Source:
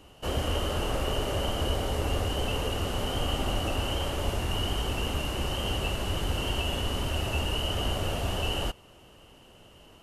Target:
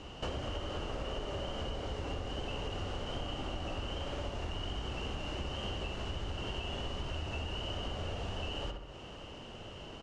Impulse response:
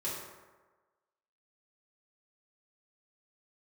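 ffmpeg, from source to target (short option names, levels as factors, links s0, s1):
-filter_complex "[0:a]lowpass=f=6600:w=0.5412,lowpass=f=6600:w=1.3066,asplit=2[s0][s1];[s1]adelay=64,lowpass=f=2400:p=1,volume=0.531,asplit=2[s2][s3];[s3]adelay=64,lowpass=f=2400:p=1,volume=0.41,asplit=2[s4][s5];[s5]adelay=64,lowpass=f=2400:p=1,volume=0.41,asplit=2[s6][s7];[s7]adelay=64,lowpass=f=2400:p=1,volume=0.41,asplit=2[s8][s9];[s9]adelay=64,lowpass=f=2400:p=1,volume=0.41[s10];[s2][s4][s6][s8][s10]amix=inputs=5:normalize=0[s11];[s0][s11]amix=inputs=2:normalize=0,acompressor=threshold=0.00891:ratio=8,volume=1.88"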